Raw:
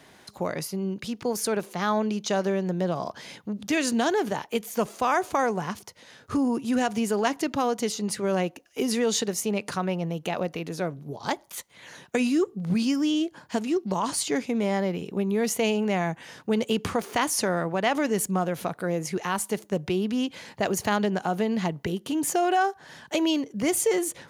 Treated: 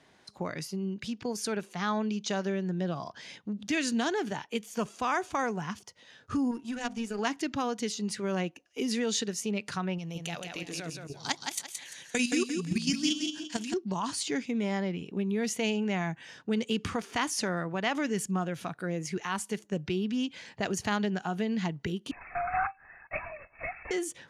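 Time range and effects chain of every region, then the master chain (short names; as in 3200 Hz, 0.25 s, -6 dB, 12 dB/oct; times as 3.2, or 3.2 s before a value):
6.51–7.19 de-hum 62.72 Hz, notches 16 + power-law curve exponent 1.4
9.98–13.74 bell 9700 Hz +14 dB 2.7 oct + level quantiser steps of 11 dB + feedback echo 0.172 s, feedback 33%, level -4.5 dB
22.11–23.91 block floating point 3-bit + brick-wall FIR band-pass 500–2700 Hz + LPC vocoder at 8 kHz whisper
whole clip: LPF 7600 Hz 12 dB/oct; spectral noise reduction 6 dB; dynamic EQ 590 Hz, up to -6 dB, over -38 dBFS, Q 0.94; gain -2.5 dB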